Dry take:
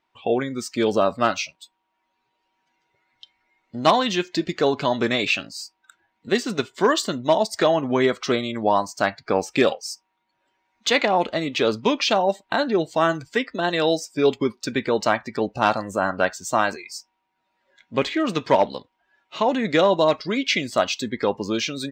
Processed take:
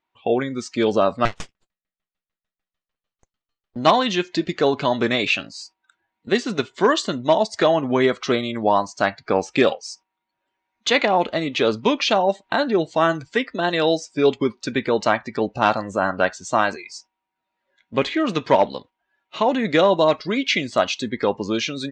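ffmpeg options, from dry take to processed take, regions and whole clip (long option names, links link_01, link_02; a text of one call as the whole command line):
ffmpeg -i in.wav -filter_complex "[0:a]asettb=1/sr,asplit=3[link_01][link_02][link_03];[link_01]atrim=end=1.254[link_04];[link_02]atrim=start=1.25:end=3.76,asetpts=PTS-STARTPTS,afade=type=in:duration=0.004:curve=qsin,afade=type=out:start_time=2.506:duration=0.004:curve=qsin,aeval=exprs='abs(val(0))':channel_layout=same,aeval=exprs='val(0)*pow(10,-27*if(lt(mod(6.7*n/s,1),2*abs(6.7)/1000),1-mod(6.7*n/s,1)/(2*abs(6.7)/1000),(mod(6.7*n/s,1)-2*abs(6.7)/1000)/(1-2*abs(6.7)/1000))/20)':channel_layout=same[link_05];[link_03]atrim=start=3.756[link_06];[link_04][link_05]acrossfade=duration=0.004:curve1=hsin:curve2=qsin[link_07];[link_07][link_06]acrossfade=duration=0.004:curve1=qsin:curve2=hsin,agate=range=-8dB:threshold=-44dB:ratio=16:detection=peak,lowpass=frequency=6900:width=0.5412,lowpass=frequency=6900:width=1.3066,equalizer=frequency=5100:width=4.1:gain=-4,volume=1.5dB" out.wav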